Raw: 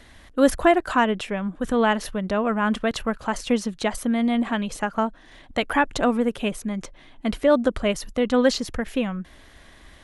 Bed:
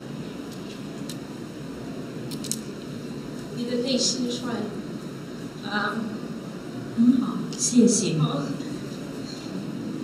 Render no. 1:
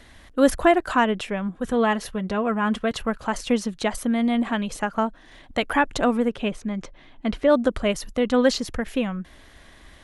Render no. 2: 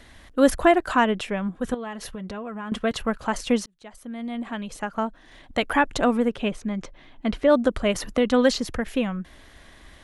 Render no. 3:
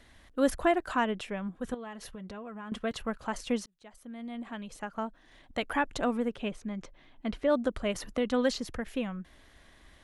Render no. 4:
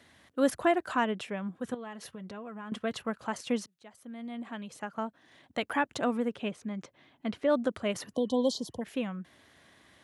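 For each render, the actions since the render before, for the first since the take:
1.49–3.01 s: comb of notches 300 Hz; 6.28–7.49 s: distance through air 79 m
1.74–2.72 s: compression, threshold -31 dBFS; 3.66–5.59 s: fade in; 7.95–8.78 s: three bands compressed up and down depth 40%
trim -8.5 dB
8.17–8.80 s: spectral replace 1.1–3 kHz before; high-pass 94 Hz 24 dB/octave

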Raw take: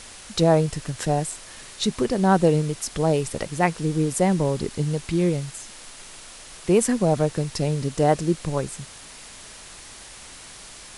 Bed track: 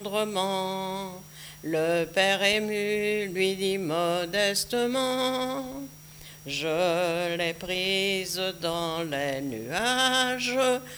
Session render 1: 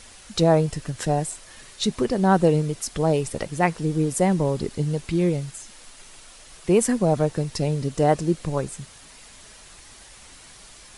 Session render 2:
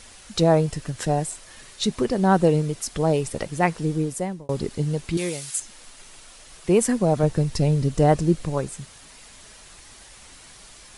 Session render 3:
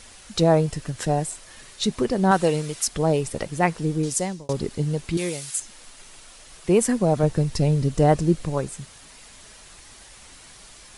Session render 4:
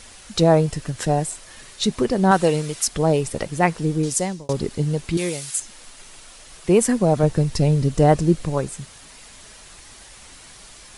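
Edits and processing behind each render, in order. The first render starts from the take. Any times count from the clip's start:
noise reduction 6 dB, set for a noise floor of -43 dBFS
3.89–4.49 s: fade out; 5.17–5.60 s: tilt EQ +4 dB/octave; 7.23–8.45 s: bass shelf 130 Hz +11 dB
2.31–2.88 s: tilt shelf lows -6 dB, about 690 Hz; 4.03–4.53 s: peaking EQ 5.7 kHz +13 dB 1.8 oct
trim +2.5 dB

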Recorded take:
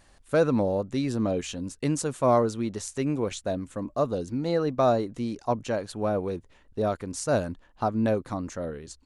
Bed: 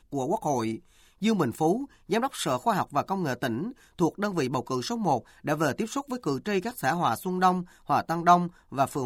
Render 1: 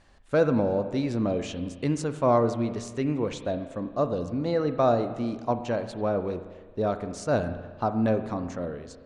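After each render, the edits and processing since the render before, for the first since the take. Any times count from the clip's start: distance through air 82 m; spring tank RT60 1.5 s, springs 34/45 ms, chirp 60 ms, DRR 9 dB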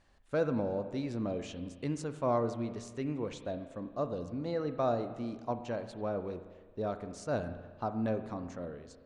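trim -8.5 dB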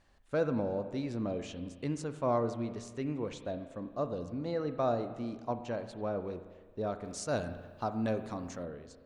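7.04–8.63 s: treble shelf 3 kHz +10.5 dB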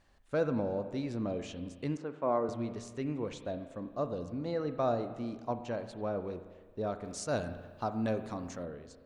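1.97–2.49 s: band-pass 230–2300 Hz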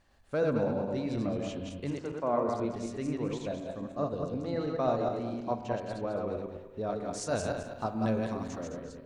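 backward echo that repeats 106 ms, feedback 51%, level -2 dB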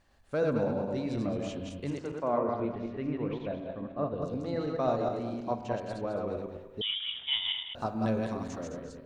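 2.38–4.22 s: low-pass 3.2 kHz 24 dB/octave; 6.81–7.75 s: frequency inversion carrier 3.6 kHz

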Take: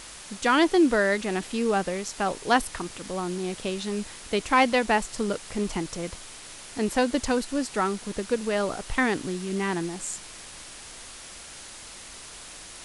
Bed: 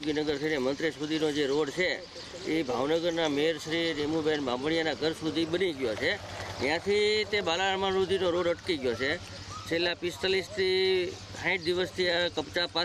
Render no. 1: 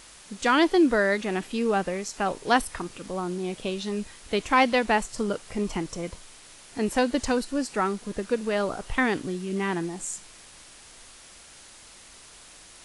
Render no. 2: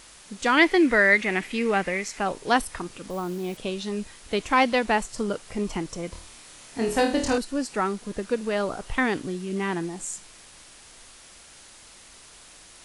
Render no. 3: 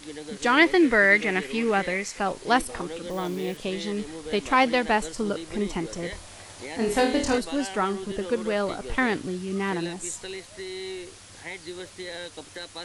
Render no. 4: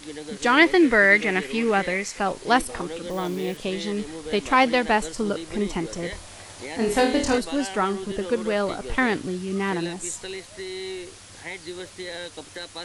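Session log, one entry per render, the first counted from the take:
noise print and reduce 6 dB
0.57–2.19 s: peaking EQ 2.1 kHz +14 dB 0.55 oct; 3.10–3.57 s: careless resampling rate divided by 2×, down none, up hold; 6.09–7.38 s: flutter echo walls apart 4.5 m, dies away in 0.41 s
add bed -9.5 dB
trim +2 dB

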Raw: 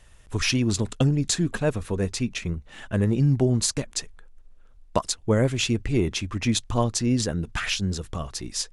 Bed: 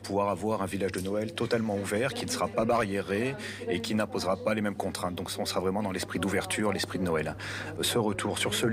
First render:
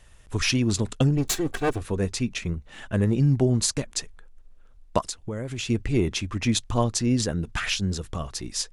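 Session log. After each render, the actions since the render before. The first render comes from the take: 1.17–1.82 s: comb filter that takes the minimum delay 2.6 ms; 5.08–5.70 s: compression 10:1, threshold -27 dBFS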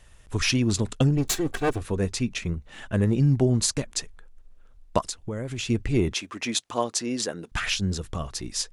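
6.13–7.52 s: high-pass 340 Hz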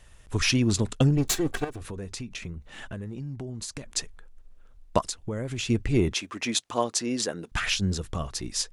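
1.64–3.86 s: compression 10:1, threshold -32 dBFS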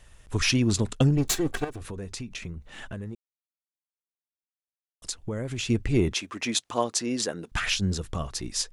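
3.15–5.02 s: mute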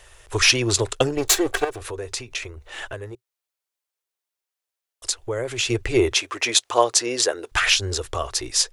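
FFT filter 120 Hz 0 dB, 170 Hz -23 dB, 380 Hz +9 dB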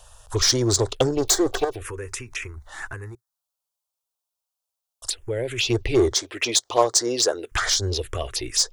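touch-sensitive phaser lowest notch 330 Hz, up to 2.6 kHz, full sweep at -18 dBFS; in parallel at -10.5 dB: wavefolder -19 dBFS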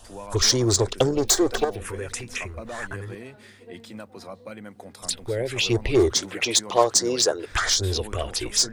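add bed -11 dB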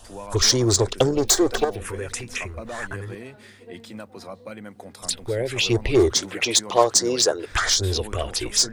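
trim +1.5 dB

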